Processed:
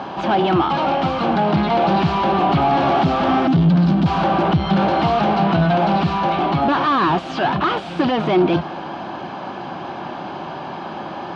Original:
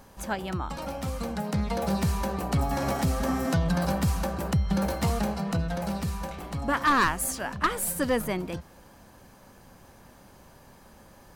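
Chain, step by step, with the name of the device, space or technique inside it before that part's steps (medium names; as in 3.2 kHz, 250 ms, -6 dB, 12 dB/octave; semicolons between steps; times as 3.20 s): 3.47–4.06 s: FFT filter 280 Hz 0 dB, 510 Hz -23 dB, 5 kHz -6 dB; overdrive pedal into a guitar cabinet (overdrive pedal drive 32 dB, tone 1.6 kHz, clips at -14 dBFS; cabinet simulation 92–4200 Hz, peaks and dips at 160 Hz +7 dB, 340 Hz +9 dB, 490 Hz -8 dB, 740 Hz +6 dB, 1.9 kHz -8 dB, 3.1 kHz +4 dB); trim +3.5 dB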